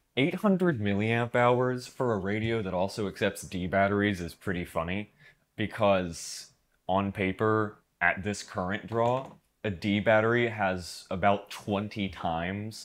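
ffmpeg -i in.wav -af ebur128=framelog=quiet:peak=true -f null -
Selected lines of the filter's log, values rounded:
Integrated loudness:
  I:         -29.0 LUFS
  Threshold: -39.2 LUFS
Loudness range:
  LRA:         2.8 LU
  Threshold: -49.4 LUFS
  LRA low:   -30.9 LUFS
  LRA high:  -28.2 LUFS
True peak:
  Peak:       -8.7 dBFS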